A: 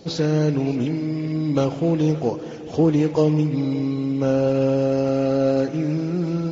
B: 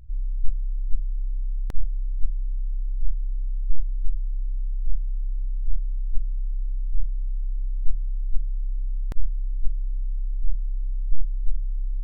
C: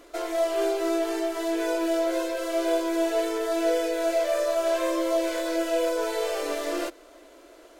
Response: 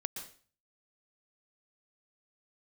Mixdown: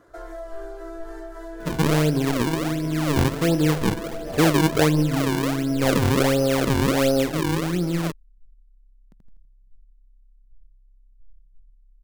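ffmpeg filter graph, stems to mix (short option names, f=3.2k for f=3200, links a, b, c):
-filter_complex "[0:a]acrusher=samples=39:mix=1:aa=0.000001:lfo=1:lforange=62.4:lforate=1.4,adelay=1600,volume=-0.5dB[a];[1:a]equalizer=f=190:t=o:w=1.3:g=13.5,asoftclip=type=tanh:threshold=-13dB,volume=-11dB,afade=t=out:st=7.77:d=0.2:silence=0.266073,asplit=2[b][c];[c]volume=-5dB[d];[2:a]highshelf=f=2k:t=q:w=3:g=-6.5,volume=-5.5dB[e];[b][e]amix=inputs=2:normalize=0,highpass=170,acompressor=threshold=-36dB:ratio=3,volume=0dB[f];[d]aecho=0:1:82|164|246|328|410|492:1|0.44|0.194|0.0852|0.0375|0.0165[g];[a][f][g]amix=inputs=3:normalize=0"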